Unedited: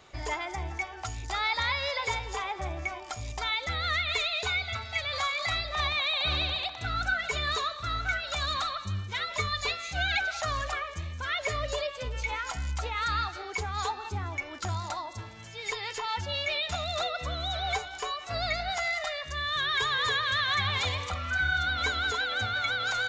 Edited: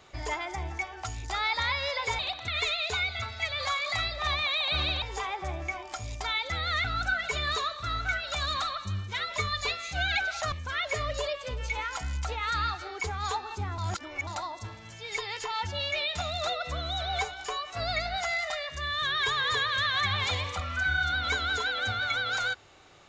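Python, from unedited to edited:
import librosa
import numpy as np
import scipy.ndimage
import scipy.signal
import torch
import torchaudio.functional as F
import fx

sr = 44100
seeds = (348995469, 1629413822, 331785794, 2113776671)

y = fx.edit(x, sr, fx.swap(start_s=2.19, length_s=1.82, other_s=6.55, other_length_s=0.29),
    fx.cut(start_s=10.52, length_s=0.54),
    fx.reverse_span(start_s=14.32, length_s=0.49), tone=tone)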